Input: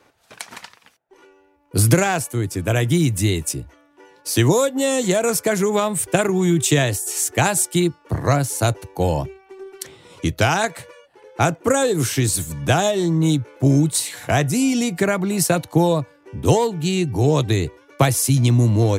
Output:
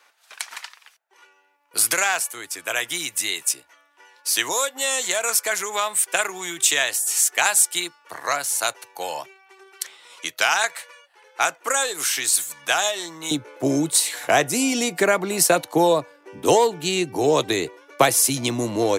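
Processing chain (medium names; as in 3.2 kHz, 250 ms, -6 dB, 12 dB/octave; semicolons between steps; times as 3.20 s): high-pass 1.1 kHz 12 dB/octave, from 13.31 s 390 Hz; trim +3 dB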